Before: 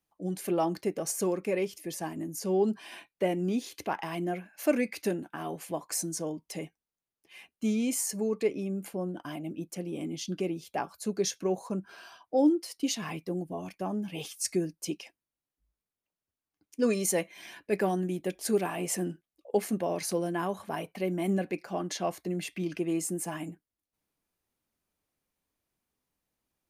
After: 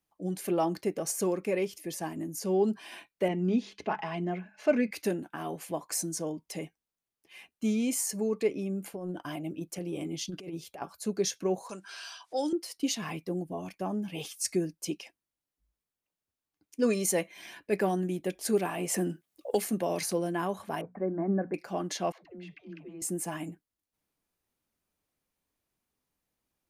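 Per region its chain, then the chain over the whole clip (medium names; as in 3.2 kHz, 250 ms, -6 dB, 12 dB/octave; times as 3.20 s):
3.28–4.91 s: distance through air 140 m + hum notches 50/100/150/200 Hz + comb 4.7 ms, depth 54%
8.93–10.82 s: peaking EQ 230 Hz -14 dB 0.2 oct + compressor with a negative ratio -35 dBFS, ratio -0.5
11.69–12.53 s: frequency weighting ITU-R 468 + upward compressor, threshold -41 dBFS
18.94–20.09 s: high-pass 62 Hz + treble shelf 6.8 kHz +5.5 dB + three bands compressed up and down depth 70%
20.81–21.54 s: steep low-pass 1.7 kHz 48 dB/octave + hum notches 60/120/180/240 Hz
22.12–23.02 s: compression 4:1, threshold -43 dBFS + distance through air 260 m + phase dispersion lows, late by 126 ms, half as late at 380 Hz
whole clip: none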